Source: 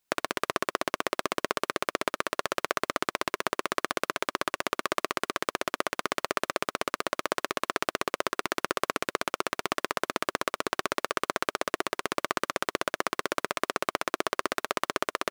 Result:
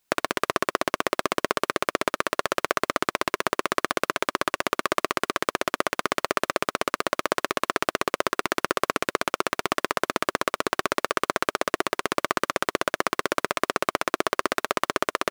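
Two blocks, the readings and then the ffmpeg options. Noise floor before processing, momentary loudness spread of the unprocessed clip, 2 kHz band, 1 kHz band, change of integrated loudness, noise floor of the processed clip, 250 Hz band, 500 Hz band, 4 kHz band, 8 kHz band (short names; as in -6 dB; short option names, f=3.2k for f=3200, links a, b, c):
-79 dBFS, 1 LU, +4.5 dB, +4.5 dB, +4.5 dB, -74 dBFS, +5.0 dB, +5.0 dB, +3.5 dB, +3.5 dB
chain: -af "asoftclip=type=tanh:threshold=-6.5dB,volume=5.5dB"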